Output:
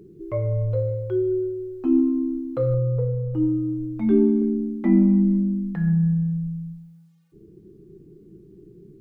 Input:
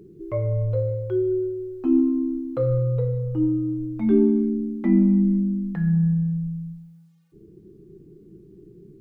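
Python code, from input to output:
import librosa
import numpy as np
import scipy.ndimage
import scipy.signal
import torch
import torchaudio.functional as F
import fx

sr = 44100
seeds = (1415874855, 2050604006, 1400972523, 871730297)

y = fx.lowpass(x, sr, hz=1300.0, slope=12, at=(2.74, 3.34))
y = fx.dynamic_eq(y, sr, hz=750.0, q=0.82, threshold_db=-35.0, ratio=4.0, max_db=5, at=(4.41, 5.93))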